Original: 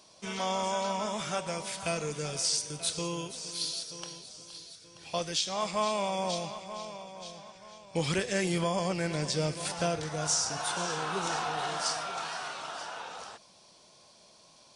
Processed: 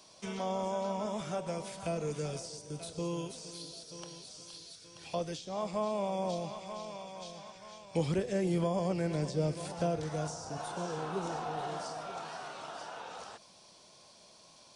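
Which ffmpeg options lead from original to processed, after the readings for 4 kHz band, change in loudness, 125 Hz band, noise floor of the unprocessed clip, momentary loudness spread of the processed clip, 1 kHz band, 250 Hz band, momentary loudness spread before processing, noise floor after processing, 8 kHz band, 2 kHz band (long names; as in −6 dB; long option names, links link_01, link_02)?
−12.0 dB, −4.5 dB, 0.0 dB, −59 dBFS, 17 LU, −5.0 dB, 0.0 dB, 16 LU, −59 dBFS, −13.0 dB, −10.0 dB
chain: -filter_complex "[0:a]acrossover=split=430|780[link_01][link_02][link_03];[link_03]acompressor=threshold=-46dB:ratio=6[link_04];[link_01][link_02][link_04]amix=inputs=3:normalize=0"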